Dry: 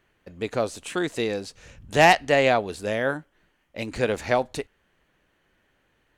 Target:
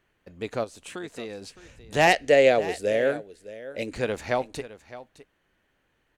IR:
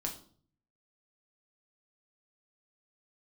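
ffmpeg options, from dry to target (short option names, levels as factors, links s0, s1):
-filter_complex "[0:a]asplit=3[s0][s1][s2];[s0]afade=t=out:st=0.63:d=0.02[s3];[s1]acompressor=threshold=0.0178:ratio=2,afade=t=in:st=0.63:d=0.02,afade=t=out:st=1.41:d=0.02[s4];[s2]afade=t=in:st=1.41:d=0.02[s5];[s3][s4][s5]amix=inputs=3:normalize=0,asettb=1/sr,asplit=3[s6][s7][s8];[s6]atrim=end=2.074[s9];[s7]atrim=start=2.07:end=3.93,asetpts=PTS-STARTPTS,afade=t=in:d=0.004:c=qsin,afade=t=out:st=1.856:d=0.004:c=qsin,equalizer=f=125:t=o:w=1:g=-3,equalizer=f=500:t=o:w=1:g=11,equalizer=f=1000:t=o:w=1:g=-11,equalizer=f=2000:t=o:w=1:g=4,equalizer=f=8000:t=o:w=1:g=4[s10];[s8]atrim=start=3.926[s11];[s9][s10]acrossfade=d=0.004:c1=hsin:c2=qsin[s12];[s12][s11]acrossfade=d=0.004:c1=qsin:c2=hsin,aecho=1:1:612:0.158,volume=0.668"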